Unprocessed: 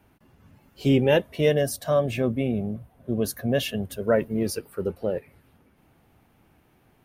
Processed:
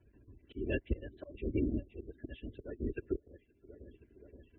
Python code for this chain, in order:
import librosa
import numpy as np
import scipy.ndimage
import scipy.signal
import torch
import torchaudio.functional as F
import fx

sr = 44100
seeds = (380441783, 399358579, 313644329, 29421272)

p1 = fx.lpc_vocoder(x, sr, seeds[0], excitation='whisper', order=10)
p2 = fx.stretch_vocoder(p1, sr, factor=0.65)
p3 = fx.air_absorb(p2, sr, metres=50.0)
p4 = fx.notch(p3, sr, hz=1300.0, q=6.4)
p5 = p4 + fx.echo_feedback(p4, sr, ms=523, feedback_pct=53, wet_db=-22, dry=0)
p6 = fx.transient(p5, sr, attack_db=1, sustain_db=-7)
p7 = fx.spec_gate(p6, sr, threshold_db=-25, keep='strong')
p8 = fx.rotary_switch(p7, sr, hz=5.5, then_hz=0.9, switch_at_s=2.47)
p9 = fx.auto_swell(p8, sr, attack_ms=653.0)
p10 = scipy.signal.sosfilt(scipy.signal.butter(2, 48.0, 'highpass', fs=sr, output='sos'), p9)
p11 = fx.band_shelf(p10, sr, hz=830.0, db=-12.5, octaves=1.1)
p12 = p11 + 0.67 * np.pad(p11, (int(3.0 * sr / 1000.0), 0))[:len(p11)]
y = p12 * 10.0 ** (1.0 / 20.0)